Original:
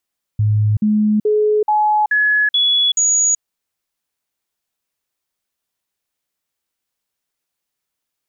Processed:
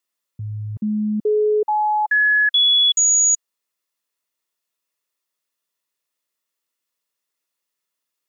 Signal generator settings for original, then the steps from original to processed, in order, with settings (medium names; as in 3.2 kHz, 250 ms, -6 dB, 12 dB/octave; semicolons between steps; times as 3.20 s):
stepped sine 106 Hz up, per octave 1, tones 7, 0.38 s, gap 0.05 s -11.5 dBFS
high-pass 370 Hz 6 dB/octave; comb of notches 770 Hz